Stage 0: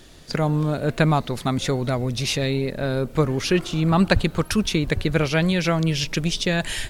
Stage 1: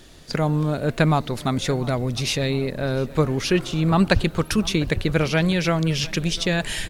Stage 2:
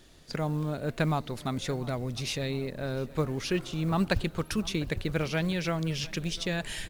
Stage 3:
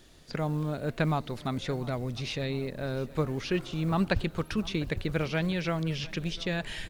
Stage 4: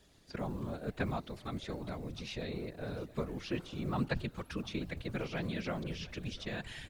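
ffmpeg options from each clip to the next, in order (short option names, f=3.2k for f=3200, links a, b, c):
-filter_complex "[0:a]asplit=2[a][b];[b]adelay=701,lowpass=f=4.2k:p=1,volume=-20dB,asplit=2[c][d];[d]adelay=701,lowpass=f=4.2k:p=1,volume=0.55,asplit=2[e][f];[f]adelay=701,lowpass=f=4.2k:p=1,volume=0.55,asplit=2[g][h];[h]adelay=701,lowpass=f=4.2k:p=1,volume=0.55[i];[a][c][e][g][i]amix=inputs=5:normalize=0"
-af "acrusher=bits=8:mode=log:mix=0:aa=0.000001,volume=-9dB"
-filter_complex "[0:a]acrossover=split=4900[a][b];[b]acompressor=threshold=-54dB:ratio=4:attack=1:release=60[c];[a][c]amix=inputs=2:normalize=0"
-af "afftfilt=real='hypot(re,im)*cos(2*PI*random(0))':imag='hypot(re,im)*sin(2*PI*random(1))':win_size=512:overlap=0.75,volume=-2dB"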